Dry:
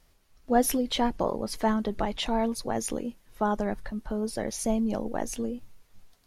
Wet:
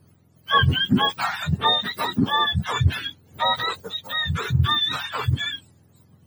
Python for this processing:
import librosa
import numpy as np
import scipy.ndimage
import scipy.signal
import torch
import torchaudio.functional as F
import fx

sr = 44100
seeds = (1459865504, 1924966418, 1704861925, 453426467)

y = fx.octave_mirror(x, sr, pivot_hz=890.0)
y = F.gain(torch.from_numpy(y), 7.5).numpy()